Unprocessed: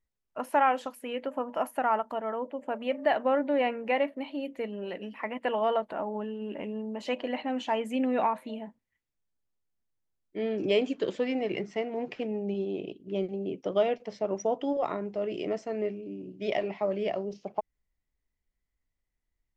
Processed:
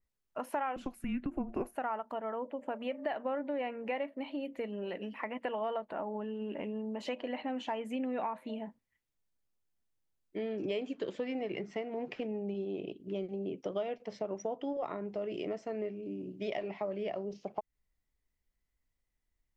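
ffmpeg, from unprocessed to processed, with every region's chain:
ffmpeg -i in.wav -filter_complex "[0:a]asettb=1/sr,asplit=3[link_01][link_02][link_03];[link_01]atrim=end=0.764[link_04];[link_02]atrim=start=0.76:end=1.76,asetpts=PTS-STARTPTS,afade=type=in:duration=0.004:curve=qsin,afade=type=out:start_time=0.996:duration=0.004:curve=qsin,equalizer=frequency=460:width=1.4:gain=8.5,afreqshift=-260[link_05];[link_03]atrim=start=1.756[link_06];[link_04][link_05]acrossfade=duration=0.004:curve1=hsin:curve2=qsin[link_07];[link_07][link_06]acrossfade=duration=0.004:curve1=qsin:curve2=hsin,acompressor=threshold=-35dB:ratio=3,adynamicequalizer=threshold=0.00178:dfrequency=3600:dqfactor=0.7:tfrequency=3600:tqfactor=0.7:attack=5:release=100:ratio=0.375:range=2.5:mode=cutabove:tftype=highshelf" out.wav

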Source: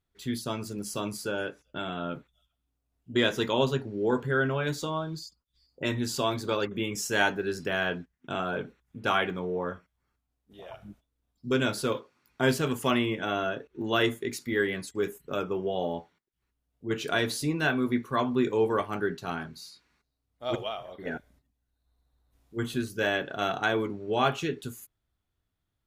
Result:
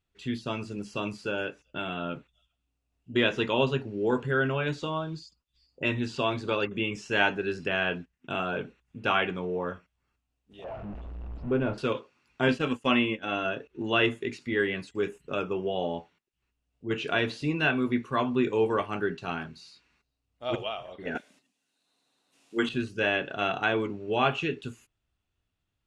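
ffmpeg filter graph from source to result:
ffmpeg -i in.wav -filter_complex "[0:a]asettb=1/sr,asplit=3[link_01][link_02][link_03];[link_01]atrim=end=10.644[link_04];[link_02]atrim=start=10.64:end=11.78,asetpts=PTS-STARTPTS,afade=type=in:duration=0.004:curve=qsin,afade=type=out:start_time=1.136:duration=0.004:curve=qsin,aeval=exprs='val(0)+0.5*0.0188*sgn(val(0))':channel_layout=same,lowpass=1000,asubboost=boost=8:cutoff=81[link_05];[link_03]atrim=start=11.776[link_06];[link_04][link_05]acrossfade=duration=0.004:curve1=hsin:curve2=qsin[link_07];[link_07][link_06]acrossfade=duration=0.004:curve1=qsin:curve2=hsin,asettb=1/sr,asplit=3[link_08][link_09][link_10];[link_08]atrim=end=12.484[link_11];[link_09]atrim=start=12.48:end=13.45,asetpts=PTS-STARTPTS,afade=type=in:duration=0.004:curve=qsin,afade=type=out:start_time=0.966:duration=0.004:curve=qsin,agate=range=-33dB:threshold=-28dB:ratio=3:release=100:detection=peak,aecho=1:1:3.8:0.37,atrim=end_sample=42777[link_12];[link_10]atrim=start=13.446[link_13];[link_11][link_12]acrossfade=duration=0.004:curve1=hsin:curve2=qsin[link_14];[link_14][link_13]acrossfade=duration=0.004:curve1=qsin:curve2=hsin,asettb=1/sr,asplit=3[link_15][link_16][link_17];[link_15]atrim=end=21.154[link_18];[link_16]atrim=start=21.15:end=22.69,asetpts=PTS-STARTPTS,afade=type=in:duration=0.004:curve=qsin,afade=type=out:start_time=1.536:duration=0.004:curve=qsin,highpass=frequency=200:width=0.5412,highpass=frequency=200:width=1.3066,highshelf=frequency=2500:gain=10.5,acontrast=30[link_19];[link_17]atrim=start=22.686[link_20];[link_18][link_19]acrossfade=duration=0.004:curve1=hsin:curve2=qsin[link_21];[link_21][link_20]acrossfade=duration=0.004:curve1=qsin:curve2=hsin,acrossover=split=3900[link_22][link_23];[link_23]acompressor=threshold=-54dB:ratio=4:attack=1:release=60[link_24];[link_22][link_24]amix=inputs=2:normalize=0,lowpass=frequency=9000:width=0.5412,lowpass=frequency=9000:width=1.3066,equalizer=frequency=2700:width_type=o:width=0.25:gain=10" out.wav

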